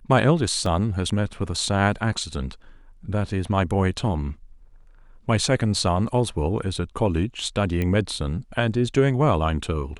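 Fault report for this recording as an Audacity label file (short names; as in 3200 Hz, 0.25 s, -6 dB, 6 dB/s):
0.660000	0.660000	gap 2.9 ms
7.820000	7.820000	pop -14 dBFS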